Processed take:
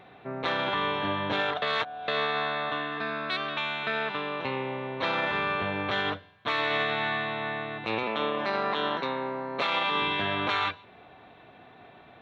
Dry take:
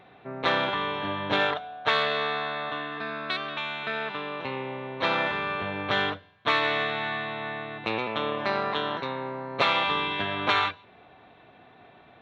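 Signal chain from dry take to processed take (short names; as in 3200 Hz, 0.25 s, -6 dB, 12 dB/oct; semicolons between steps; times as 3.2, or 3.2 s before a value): 1.62–2.08 reverse; 8.03–10.02 HPF 150 Hz 24 dB/oct; limiter -19 dBFS, peak gain reduction 8.5 dB; gain +1.5 dB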